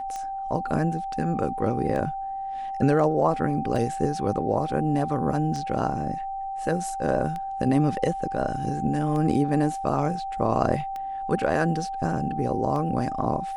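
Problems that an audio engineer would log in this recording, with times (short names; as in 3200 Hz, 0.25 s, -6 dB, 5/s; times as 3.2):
tick 33 1/3 rpm -21 dBFS
tone 780 Hz -29 dBFS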